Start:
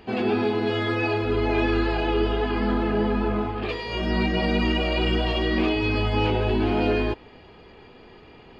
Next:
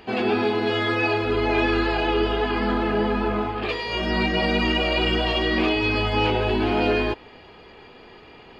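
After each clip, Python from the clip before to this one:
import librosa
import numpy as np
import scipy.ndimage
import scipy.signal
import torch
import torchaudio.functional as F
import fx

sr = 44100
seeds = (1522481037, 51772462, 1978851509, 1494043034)

y = fx.low_shelf(x, sr, hz=380.0, db=-7.0)
y = y * librosa.db_to_amplitude(4.5)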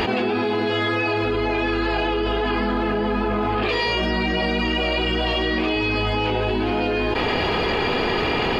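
y = fx.env_flatten(x, sr, amount_pct=100)
y = y * librosa.db_to_amplitude(-3.0)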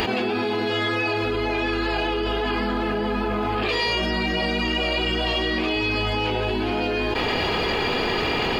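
y = fx.high_shelf(x, sr, hz=4700.0, db=9.0)
y = y * librosa.db_to_amplitude(-2.5)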